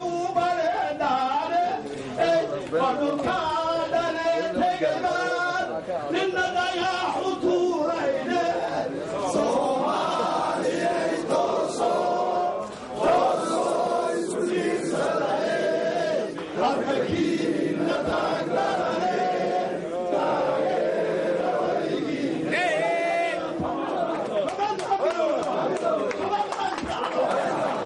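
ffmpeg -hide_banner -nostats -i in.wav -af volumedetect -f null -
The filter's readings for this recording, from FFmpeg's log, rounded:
mean_volume: -24.8 dB
max_volume: -13.6 dB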